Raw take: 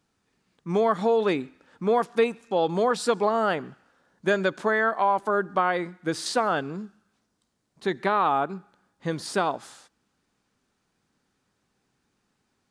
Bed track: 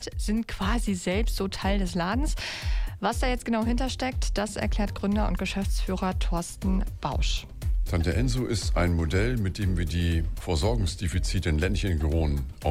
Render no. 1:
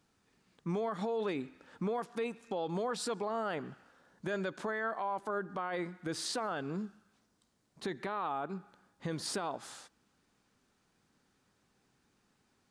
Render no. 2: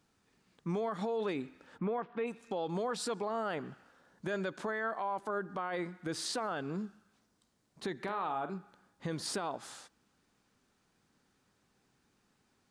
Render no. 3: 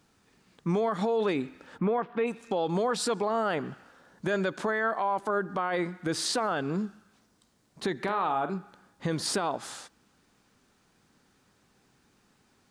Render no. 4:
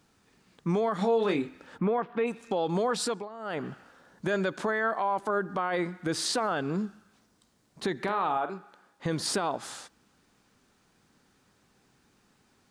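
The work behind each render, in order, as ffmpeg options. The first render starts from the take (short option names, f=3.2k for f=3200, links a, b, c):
-af "acompressor=threshold=-35dB:ratio=2,alimiter=level_in=3dB:limit=-24dB:level=0:latency=1:release=25,volume=-3dB"
-filter_complex "[0:a]asplit=3[a][b][c];[a]afade=t=out:st=1.77:d=0.02[d];[b]lowpass=f=2.9k:w=0.5412,lowpass=f=2.9k:w=1.3066,afade=t=in:st=1.77:d=0.02,afade=t=out:st=2.26:d=0.02[e];[c]afade=t=in:st=2.26:d=0.02[f];[d][e][f]amix=inputs=3:normalize=0,asettb=1/sr,asplit=3[g][h][i];[g]atrim=end=8.004[j];[h]atrim=start=8:end=8.55,asetpts=PTS-STARTPTS,afade=t=in:d=0.004:c=qsin,afade=t=out:st=0.546:d=0.004:c=qsin,asplit=2[k][l];[l]adelay=45,volume=-9dB[m];[k][m]amix=inputs=2:normalize=0,atrim=end_sample=24255[n];[i]atrim=start=8.546[o];[j][n]acrossfade=d=0.004:c1=hsin:c2=qsin[p];[p][o]acrossfade=d=0.004:c1=qsin:c2=hsin"
-af "volume=7.5dB"
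-filter_complex "[0:a]asettb=1/sr,asplit=3[a][b][c];[a]atrim=end=0.974[d];[b]atrim=start=0.97:end=1.48,asetpts=PTS-STARTPTS,afade=t=in:d=0.004:c=qsin,afade=t=out:st=0.506:d=0.004:c=qsin,asplit=2[e][f];[f]adelay=26,volume=-6.5dB[g];[e][g]amix=inputs=2:normalize=0,atrim=end_sample=22491[h];[c]atrim=start=1.476[i];[d][h]acrossfade=d=0.004:c1=hsin:c2=qsin[j];[j][i]acrossfade=d=0.004:c1=qsin:c2=hsin,asettb=1/sr,asplit=3[k][l][m];[k]atrim=end=8.374[n];[l]atrim=start=8.37:end=9.06,asetpts=PTS-STARTPTS,afade=t=in:d=0.004:c=qsin,afade=t=out:st=0.686:d=0.004:c=qsin,bass=f=250:g=-13,treble=f=4k:g=-3[o];[m]atrim=start=9.056[p];[n][o]acrossfade=d=0.004:c1=hsin:c2=qsin[q];[q][p]acrossfade=d=0.004:c1=qsin:c2=hsin,asplit=3[r][s][t];[r]atrim=end=3.29,asetpts=PTS-STARTPTS,afade=t=out:st=3.03:d=0.26:silence=0.16788[u];[s]atrim=start=3.29:end=3.39,asetpts=PTS-STARTPTS,volume=-15.5dB[v];[t]atrim=start=3.39,asetpts=PTS-STARTPTS,afade=t=in:d=0.26:silence=0.16788[w];[u][v][w]concat=n=3:v=0:a=1"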